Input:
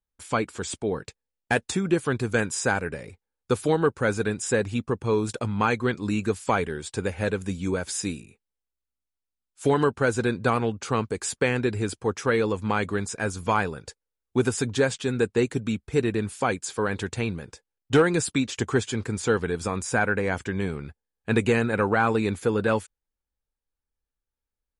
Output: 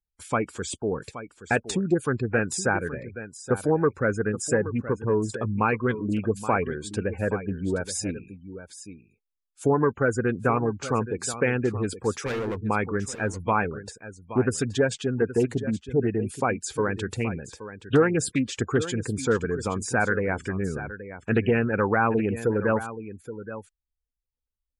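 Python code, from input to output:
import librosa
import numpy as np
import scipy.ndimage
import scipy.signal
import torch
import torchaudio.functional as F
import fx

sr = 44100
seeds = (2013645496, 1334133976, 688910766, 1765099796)

y = fx.spec_gate(x, sr, threshold_db=-20, keep='strong')
y = fx.overload_stage(y, sr, gain_db=27.5, at=(12.19, 12.61), fade=0.02)
y = y + 10.0 ** (-13.0 / 20.0) * np.pad(y, (int(824 * sr / 1000.0), 0))[:len(y)]
y = fx.doppler_dist(y, sr, depth_ms=0.17)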